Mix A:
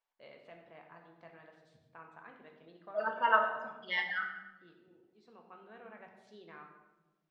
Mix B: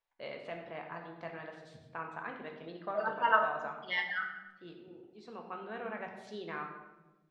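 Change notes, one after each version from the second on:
first voice +11.5 dB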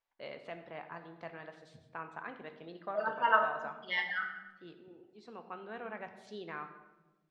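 first voice: send -6.0 dB

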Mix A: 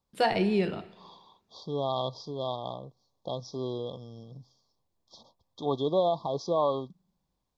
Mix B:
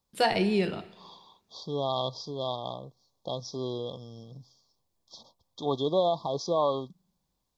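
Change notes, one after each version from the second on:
master: add treble shelf 3.8 kHz +8 dB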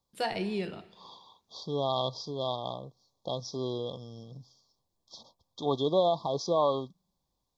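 first voice -7.0 dB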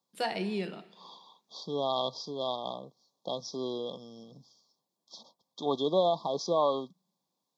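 master: add Chebyshev high-pass 180 Hz, order 3

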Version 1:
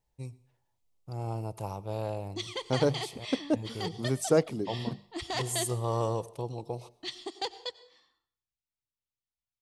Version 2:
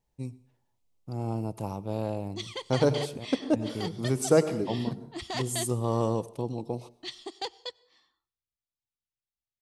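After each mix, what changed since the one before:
first voice: add peaking EQ 240 Hz +11.5 dB 0.94 oct; second voice: send on; background: send -10.0 dB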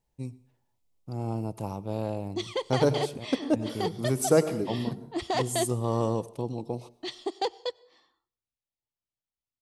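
second voice: remove low-pass 9.1 kHz 12 dB/octave; background: add peaking EQ 500 Hz +10 dB 2.2 oct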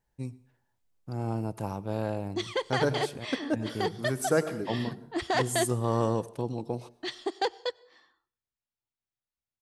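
second voice -4.5 dB; master: add peaking EQ 1.6 kHz +11.5 dB 0.47 oct

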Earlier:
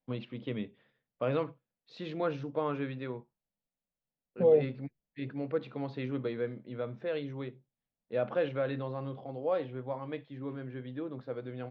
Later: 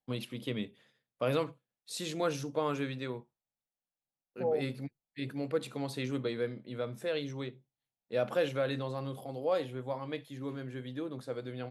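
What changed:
second voice: add four-pole ladder low-pass 890 Hz, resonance 70%; master: remove Gaussian low-pass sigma 2.7 samples

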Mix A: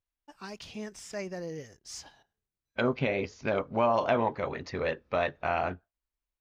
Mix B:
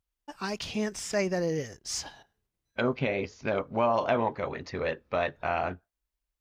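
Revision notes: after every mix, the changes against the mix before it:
first voice +9.0 dB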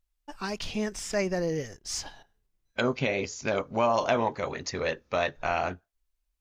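first voice: remove high-pass 55 Hz 12 dB/octave; second voice: remove distance through air 230 m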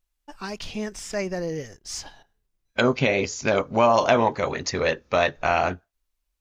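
second voice +6.5 dB

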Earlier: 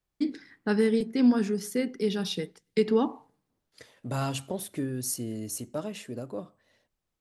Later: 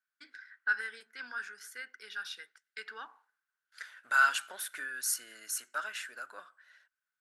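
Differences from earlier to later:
first voice -10.5 dB; master: add resonant high-pass 1.5 kHz, resonance Q 13

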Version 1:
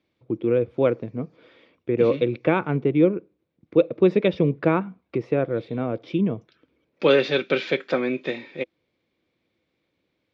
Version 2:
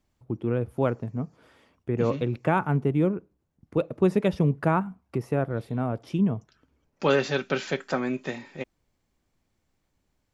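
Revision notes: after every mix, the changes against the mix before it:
master: remove cabinet simulation 120–4800 Hz, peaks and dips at 330 Hz +8 dB, 500 Hz +9 dB, 840 Hz -4 dB, 2.3 kHz +9 dB, 3.6 kHz +8 dB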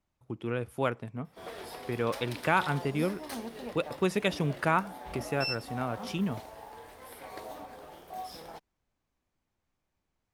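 first voice: add tilt shelf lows -8.5 dB, about 1.1 kHz; second voice: muted; background: unmuted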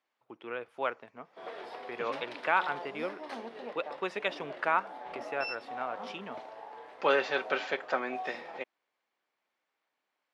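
second voice: unmuted; background: add bass shelf 380 Hz +12 dB; master: add band-pass 570–3200 Hz

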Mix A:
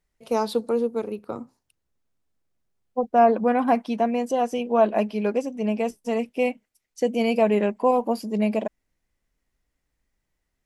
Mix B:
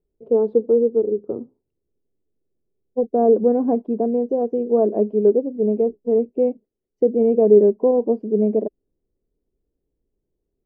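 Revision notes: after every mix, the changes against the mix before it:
master: add resonant low-pass 410 Hz, resonance Q 4.2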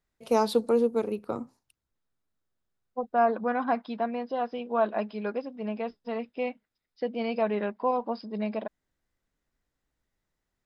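second voice: add rippled Chebyshev low-pass 5.2 kHz, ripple 9 dB; master: remove resonant low-pass 410 Hz, resonance Q 4.2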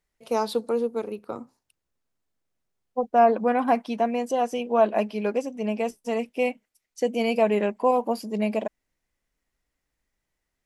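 second voice: remove rippled Chebyshev low-pass 5.2 kHz, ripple 9 dB; master: add bass shelf 280 Hz -5.5 dB

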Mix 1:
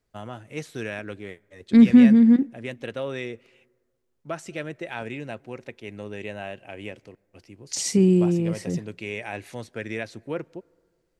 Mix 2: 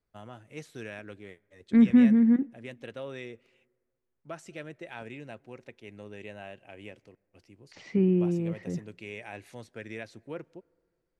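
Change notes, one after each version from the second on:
first voice -8.5 dB; second voice: add four-pole ladder low-pass 2.7 kHz, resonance 25%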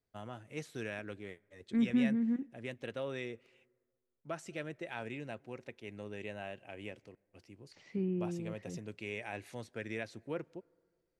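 second voice -11.0 dB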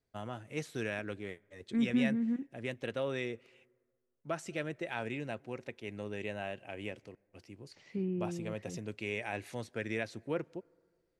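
first voice +4.0 dB; second voice: send off

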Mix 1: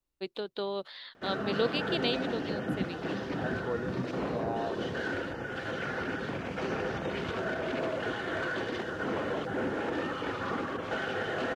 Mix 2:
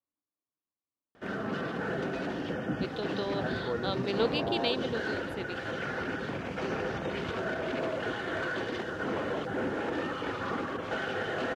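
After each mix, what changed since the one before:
first voice: entry +2.60 s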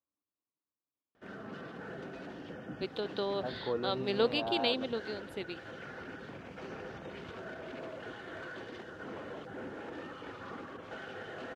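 background -11.0 dB

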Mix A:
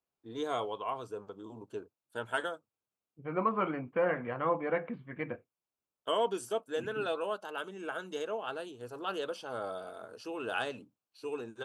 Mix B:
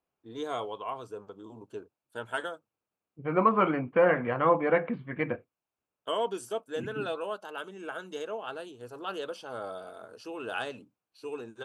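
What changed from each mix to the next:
second voice +7.0 dB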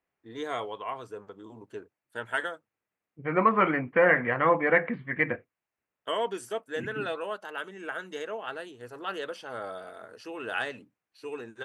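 master: add peaking EQ 1.9 kHz +13.5 dB 0.43 oct

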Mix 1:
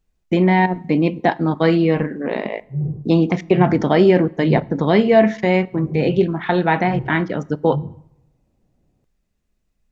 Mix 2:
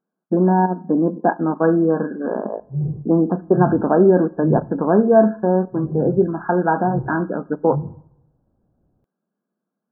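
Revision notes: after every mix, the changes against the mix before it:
speech: add brick-wall FIR band-pass 160–1700 Hz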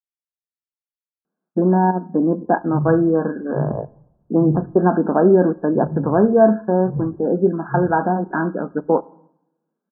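speech: entry +1.25 s

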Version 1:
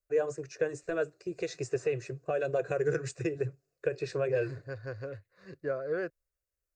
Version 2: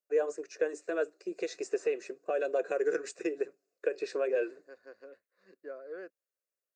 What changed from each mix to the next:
second voice -10.0 dB; master: add elliptic high-pass 210 Hz, stop band 40 dB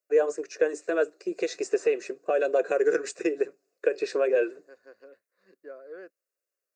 first voice +6.5 dB

